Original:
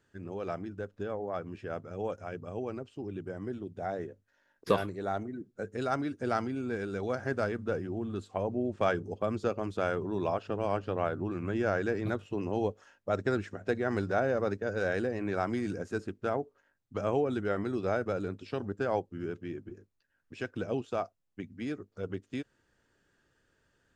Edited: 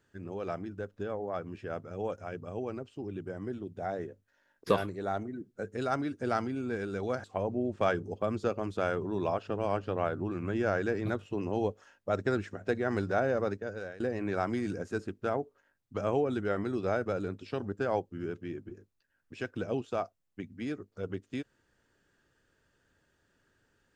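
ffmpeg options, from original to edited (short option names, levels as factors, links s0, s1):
-filter_complex "[0:a]asplit=3[s0][s1][s2];[s0]atrim=end=7.242[s3];[s1]atrim=start=8.238:end=15,asetpts=PTS-STARTPTS,afade=t=out:st=6.172:d=0.59:silence=0.0841395[s4];[s2]atrim=start=15,asetpts=PTS-STARTPTS,afade=t=in:d=0.004:c=hsin:silence=0.0841395[s5];[s4][s5]concat=n=2:v=0:a=1[s6];[s3][s6]acrossfade=d=0.004:c1=hsin:c2=hsin"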